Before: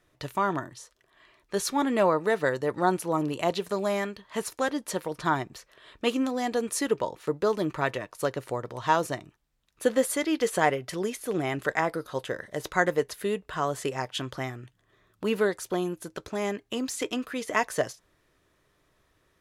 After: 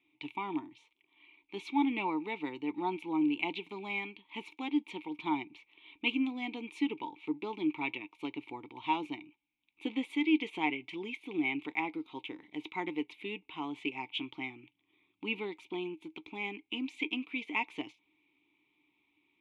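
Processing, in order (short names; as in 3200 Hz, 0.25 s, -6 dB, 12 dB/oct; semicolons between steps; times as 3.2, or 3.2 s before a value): vowel filter u; band shelf 2900 Hz +15.5 dB 1 oct; gain +2.5 dB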